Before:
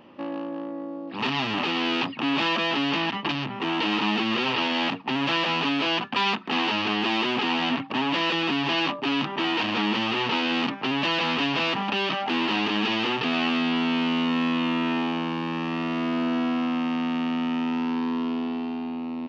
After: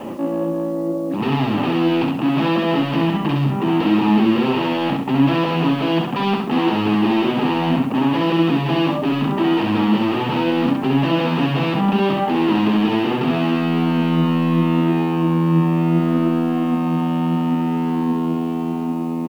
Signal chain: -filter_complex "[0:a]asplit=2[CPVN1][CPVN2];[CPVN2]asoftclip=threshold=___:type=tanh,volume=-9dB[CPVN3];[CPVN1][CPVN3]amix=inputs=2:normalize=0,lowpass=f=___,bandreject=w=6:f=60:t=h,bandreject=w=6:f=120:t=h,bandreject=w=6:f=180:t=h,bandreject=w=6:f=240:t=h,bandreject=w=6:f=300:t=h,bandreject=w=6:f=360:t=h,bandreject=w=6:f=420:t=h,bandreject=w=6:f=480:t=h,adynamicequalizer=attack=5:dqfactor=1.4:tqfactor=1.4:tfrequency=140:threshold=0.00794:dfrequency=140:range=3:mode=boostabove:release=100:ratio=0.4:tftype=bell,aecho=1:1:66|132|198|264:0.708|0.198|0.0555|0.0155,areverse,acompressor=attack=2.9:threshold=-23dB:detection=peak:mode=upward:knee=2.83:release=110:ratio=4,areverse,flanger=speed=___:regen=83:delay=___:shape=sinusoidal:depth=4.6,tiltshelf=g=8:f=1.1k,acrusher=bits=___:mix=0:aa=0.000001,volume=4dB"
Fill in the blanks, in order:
-24dB, 6.4k, 0.73, 2.3, 8